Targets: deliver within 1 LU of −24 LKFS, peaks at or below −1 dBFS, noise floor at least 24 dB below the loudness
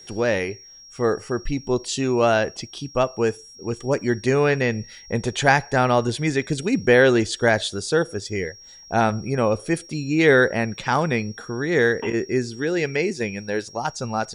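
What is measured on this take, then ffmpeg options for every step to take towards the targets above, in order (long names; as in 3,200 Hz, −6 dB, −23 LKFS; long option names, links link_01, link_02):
interfering tone 5,600 Hz; level of the tone −43 dBFS; integrated loudness −22.0 LKFS; sample peak −3.0 dBFS; target loudness −24.0 LKFS
→ -af "bandreject=frequency=5600:width=30"
-af "volume=-2dB"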